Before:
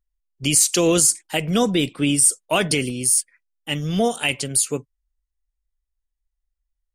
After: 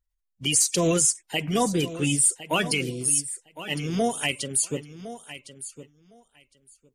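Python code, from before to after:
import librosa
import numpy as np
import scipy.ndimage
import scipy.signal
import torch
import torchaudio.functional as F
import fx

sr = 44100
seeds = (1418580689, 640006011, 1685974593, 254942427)

p1 = fx.spec_quant(x, sr, step_db=30)
p2 = p1 + fx.echo_feedback(p1, sr, ms=1059, feedback_pct=15, wet_db=-14, dry=0)
y = p2 * 10.0 ** (-4.0 / 20.0)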